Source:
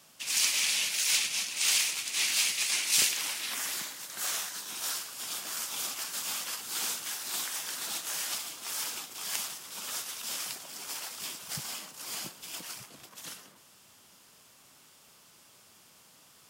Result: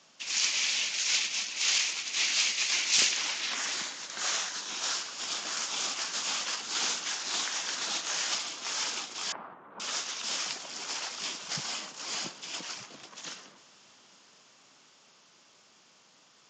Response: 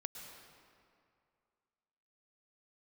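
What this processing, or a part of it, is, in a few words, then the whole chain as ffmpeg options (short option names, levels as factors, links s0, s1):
Bluetooth headset: -filter_complex "[0:a]asettb=1/sr,asplit=3[s0][s1][s2];[s0]atrim=end=9.324[s3];[s1]atrim=start=9.32:end=9.8,asetpts=PTS-STARTPTS,afade=t=in:d=0.004:c=qsin,afade=t=out:st=0.476:d=0.004:c=qsin,lowpass=f=1300:w=0.5412,lowpass=f=1300:w=1.3066[s4];[s2]atrim=start=9.796[s5];[s3][s4]acrossfade=d=0.004:c1=hsin:c2=qsin[s6];[s6][s5]acrossfade=d=0.004:c1=qsin:c2=hsin,highpass=180,dynaudnorm=f=290:g=21:m=1.78,aresample=16000,aresample=44100" -ar 16000 -c:a sbc -b:a 64k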